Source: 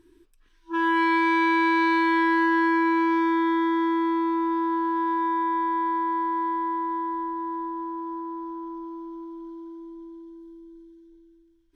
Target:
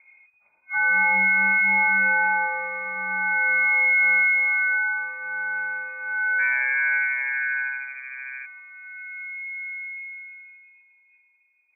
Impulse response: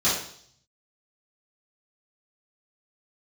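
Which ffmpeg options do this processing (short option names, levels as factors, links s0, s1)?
-filter_complex "[0:a]asplit=3[s0][s1][s2];[s0]afade=t=out:st=6.38:d=0.02[s3];[s1]asplit=7[s4][s5][s6][s7][s8][s9][s10];[s5]adelay=81,afreqshift=-130,volume=0.708[s11];[s6]adelay=162,afreqshift=-260,volume=0.339[s12];[s7]adelay=243,afreqshift=-390,volume=0.162[s13];[s8]adelay=324,afreqshift=-520,volume=0.0785[s14];[s9]adelay=405,afreqshift=-650,volume=0.0376[s15];[s10]adelay=486,afreqshift=-780,volume=0.018[s16];[s4][s11][s12][s13][s14][s15][s16]amix=inputs=7:normalize=0,afade=t=in:st=6.38:d=0.02,afade=t=out:st=8.42:d=0.02[s17];[s2]afade=t=in:st=8.42:d=0.02[s18];[s3][s17][s18]amix=inputs=3:normalize=0,flanger=delay=19.5:depth=3.2:speed=0.18,volume=10,asoftclip=hard,volume=0.1,equalizer=f=200:w=0.47:g=3,lowpass=f=2100:t=q:w=0.5098,lowpass=f=2100:t=q:w=0.6013,lowpass=f=2100:t=q:w=0.9,lowpass=f=2100:t=q:w=2.563,afreqshift=-2500,volume=1.58"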